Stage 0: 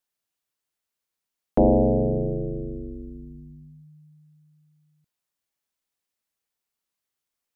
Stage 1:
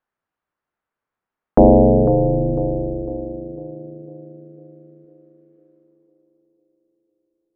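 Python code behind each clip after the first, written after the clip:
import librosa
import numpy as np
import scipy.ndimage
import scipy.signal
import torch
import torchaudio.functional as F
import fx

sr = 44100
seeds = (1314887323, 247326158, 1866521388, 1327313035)

y = fx.filter_sweep_lowpass(x, sr, from_hz=1400.0, to_hz=480.0, start_s=5.7, end_s=6.62, q=1.4)
y = fx.echo_banded(y, sr, ms=501, feedback_pct=56, hz=380.0, wet_db=-8)
y = F.gain(torch.from_numpy(y), 7.0).numpy()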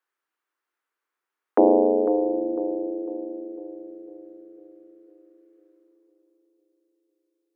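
y = scipy.signal.sosfilt(scipy.signal.butter(6, 320.0, 'highpass', fs=sr, output='sos'), x)
y = fx.peak_eq(y, sr, hz=620.0, db=-10.5, octaves=1.2)
y = F.gain(torch.from_numpy(y), 3.0).numpy()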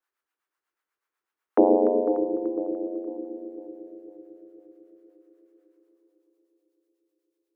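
y = fx.harmonic_tremolo(x, sr, hz=8.1, depth_pct=70, crossover_hz=610.0)
y = fx.echo_feedback(y, sr, ms=294, feedback_pct=51, wet_db=-13.0)
y = F.gain(torch.from_numpy(y), 1.5).numpy()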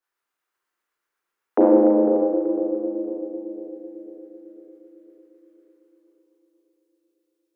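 y = fx.rev_schroeder(x, sr, rt60_s=1.7, comb_ms=32, drr_db=-2.5)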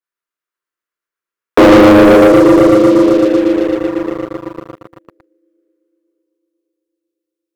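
y = fx.peak_eq(x, sr, hz=810.0, db=-13.0, octaves=0.21)
y = fx.leveller(y, sr, passes=5)
y = F.gain(torch.from_numpy(y), 4.0).numpy()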